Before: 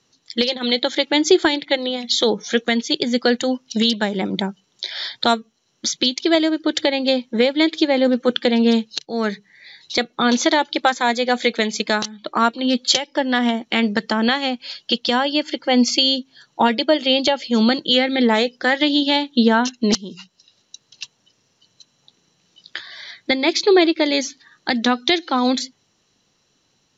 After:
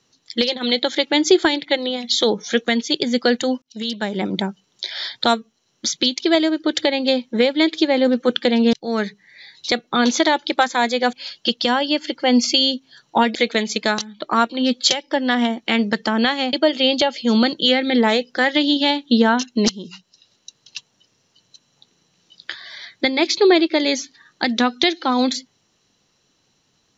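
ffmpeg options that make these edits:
-filter_complex "[0:a]asplit=6[a][b][c][d][e][f];[a]atrim=end=3.62,asetpts=PTS-STARTPTS,afade=t=out:st=3.616:d=0.004:c=hsin[g];[b]atrim=start=3.62:end=8.732,asetpts=PTS-STARTPTS,afade=t=in:d=0.61[h];[c]atrim=start=8.988:end=11.392[i];[d]atrim=start=14.568:end=16.792[j];[e]atrim=start=11.388:end=14.572[k];[f]atrim=start=16.788[l];[g][h]concat=n=2:v=0:a=1[m];[m][i]acrossfade=d=0.004:c1=hsin:c2=hsin[n];[n][j]acrossfade=d=0.004:c1=hsin:c2=hsin[o];[o][k]acrossfade=d=0.004:c1=hsin:c2=hsin[p];[p][l]acrossfade=d=0.004:c1=hsin:c2=hsin"

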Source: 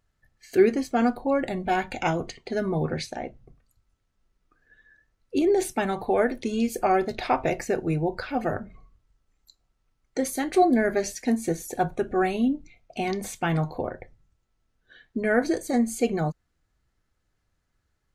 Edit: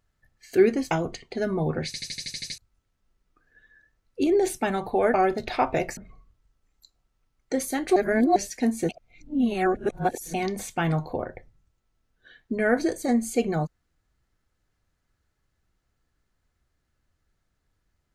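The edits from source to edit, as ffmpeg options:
-filter_complex "[0:a]asplit=17[a][b][c][d][e][f][g][h][i][j][k][l][m][n][o][p][q];[a]atrim=end=0.912[r];[b]atrim=start=2.058:end=3.092[s];[c]atrim=start=3.008:end=3.092[t];[d]atrim=start=3.008:end=3.092[u];[e]atrim=start=3.008:end=3.092[v];[f]atrim=start=3.008:end=3.092[w];[g]atrim=start=3.008:end=3.092[x];[h]atrim=start=3.008:end=3.092[y];[i]atrim=start=3.008:end=3.092[z];[j]atrim=start=3.008:end=3.092[aa];[k]atrim=start=3.728:end=6.292[ab];[l]atrim=start=6.848:end=7.682[ac];[m]atrim=start=8.618:end=10.612[ad];[n]atrim=start=10.608:end=11.012,asetpts=PTS-STARTPTS,areverse[ae];[o]atrim=start=11.008:end=11.542[af];[p]atrim=start=11.538:end=12.992,asetpts=PTS-STARTPTS,areverse[ag];[q]atrim=start=12.988[ah];[r][s]acrossfade=d=0.004:c1=hsin:c2=hsin[ai];[ai][t]acrossfade=d=0.004:c1=hsin:c2=hsin[aj];[aj][u]acrossfade=d=0.004:c1=hsin:c2=hsin[ak];[ak][v]acrossfade=d=0.004:c1=hsin:c2=hsin[al];[al][w]acrossfade=d=0.004:c1=hsin:c2=hsin[am];[am][x]acrossfade=d=0.004:c1=hsin:c2=hsin[an];[an][y]acrossfade=d=0.004:c1=hsin:c2=hsin[ao];[ao][z]acrossfade=d=0.004:c1=hsin:c2=hsin[ap];[ap][aa]acrossfade=d=0.004:c1=hsin:c2=hsin[aq];[aq][ab]acrossfade=d=0.004:c1=hsin:c2=hsin[ar];[ar][ac]acrossfade=d=0.004:c1=hsin:c2=hsin[as];[as][ad]acrossfade=d=0.004:c1=hsin:c2=hsin[at];[at][ae]acrossfade=d=0.004:c1=hsin:c2=hsin[au];[au][af]acrossfade=d=0.004:c1=hsin:c2=hsin[av];[av][ag]acrossfade=d=0.004:c1=hsin:c2=hsin[aw];[aw][ah]acrossfade=d=0.004:c1=hsin:c2=hsin"

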